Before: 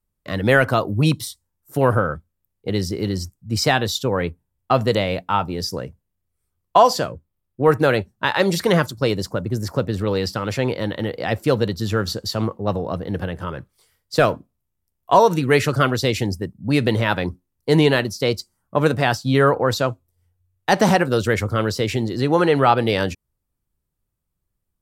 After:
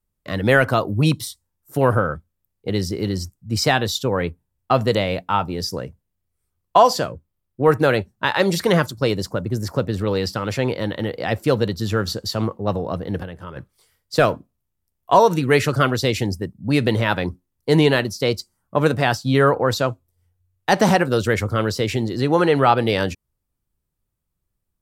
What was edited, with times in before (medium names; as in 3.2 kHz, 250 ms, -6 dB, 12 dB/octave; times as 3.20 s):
13.23–13.56 s: gain -7 dB